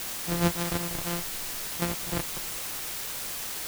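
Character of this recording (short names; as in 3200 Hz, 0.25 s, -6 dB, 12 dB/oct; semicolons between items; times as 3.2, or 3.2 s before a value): a buzz of ramps at a fixed pitch in blocks of 256 samples; chopped level 1.1 Hz, depth 65%, duty 85%; a quantiser's noise floor 6-bit, dither triangular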